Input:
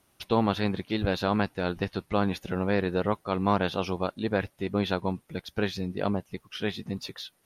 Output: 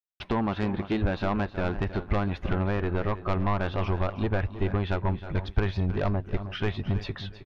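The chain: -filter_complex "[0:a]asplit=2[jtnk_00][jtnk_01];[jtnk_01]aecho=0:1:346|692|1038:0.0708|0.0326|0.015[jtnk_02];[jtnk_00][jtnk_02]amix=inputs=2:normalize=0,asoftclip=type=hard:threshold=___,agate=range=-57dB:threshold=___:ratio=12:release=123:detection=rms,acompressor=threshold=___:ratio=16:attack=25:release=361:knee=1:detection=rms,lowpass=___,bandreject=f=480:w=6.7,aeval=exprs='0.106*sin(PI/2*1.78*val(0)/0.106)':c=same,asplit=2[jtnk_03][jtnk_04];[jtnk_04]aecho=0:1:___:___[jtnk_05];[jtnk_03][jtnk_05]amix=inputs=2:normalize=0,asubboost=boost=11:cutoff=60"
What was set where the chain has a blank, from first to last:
-17.5dB, -58dB, -28dB, 2000, 316, 0.211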